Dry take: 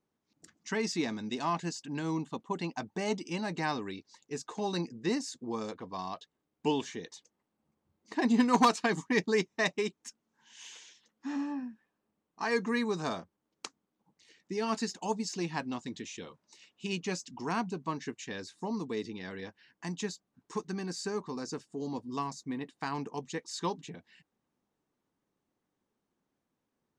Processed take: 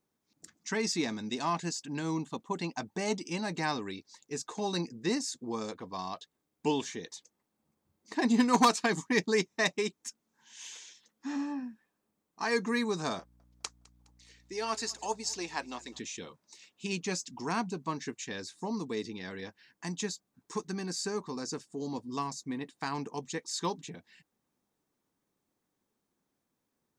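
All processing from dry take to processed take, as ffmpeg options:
-filter_complex "[0:a]asettb=1/sr,asplit=3[a][b][c];[a]atrim=end=13.194[d];[b]atrim=start=13.19:end=15.99,asetpts=PTS-STARTPTS,afade=t=in:d=0.004:c=qsin,afade=t=out:st=2.796:d=0.004:c=qsin,highpass=400,aecho=1:1:207|414|621:0.0708|0.0354|0.0177,atrim=end_sample=123480,aeval=exprs='val(0)+0.000708*(sin(2*PI*60*n/s)+sin(2*PI*2*60*n/s)/2+sin(2*PI*3*60*n/s)/3+sin(2*PI*4*60*n/s)/4+sin(2*PI*5*60*n/s)/5)':c=same[e];[c]atrim=start=15.986[f];[d][e]acrossfade=d=0.004:c1=hsin:c2=qsin[g];[g][f]acrossfade=d=0.004:c1=qsin:c2=hsin,highshelf=f=4.8k:g=7.5,bandreject=f=2.9k:w=19"

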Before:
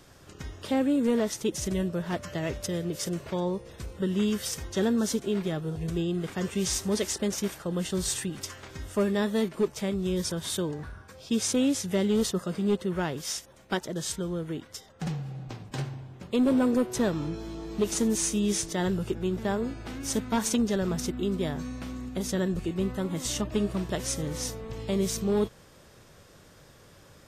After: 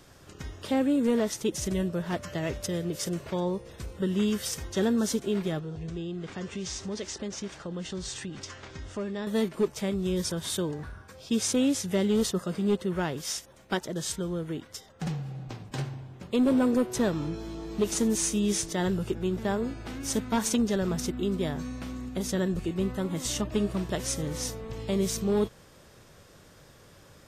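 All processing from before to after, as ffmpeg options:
-filter_complex "[0:a]asettb=1/sr,asplit=3[a][b][c];[a]atrim=end=5.594[d];[b]atrim=start=5.59:end=9.27,asetpts=PTS-STARTPTS,afade=t=in:d=0.004:c=qsin,afade=t=out:st=3.676:d=0.004:c=qsin,lowpass=f=7k:w=0.5412,lowpass=f=7k:w=1.3066,acompressor=threshold=-36dB:ratio=2:attack=3.2:release=140:knee=1:detection=peak[e];[c]atrim=start=9.266[f];[d][e]acrossfade=d=0.004:c1=hsin:c2=qsin[g];[g][f]acrossfade=d=0.004:c1=qsin:c2=hsin"

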